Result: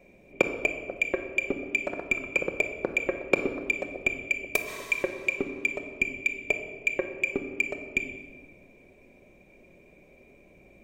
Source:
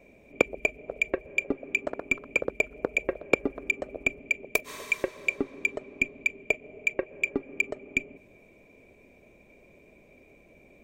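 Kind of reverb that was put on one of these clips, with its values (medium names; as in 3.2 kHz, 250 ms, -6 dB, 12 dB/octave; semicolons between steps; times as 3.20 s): simulated room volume 1400 m³, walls mixed, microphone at 1 m; trim -1 dB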